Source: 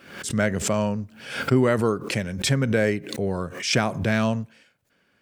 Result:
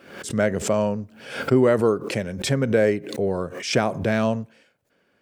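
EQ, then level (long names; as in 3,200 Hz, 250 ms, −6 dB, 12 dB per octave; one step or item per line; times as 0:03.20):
parametric band 490 Hz +7.5 dB 1.9 octaves
−3.0 dB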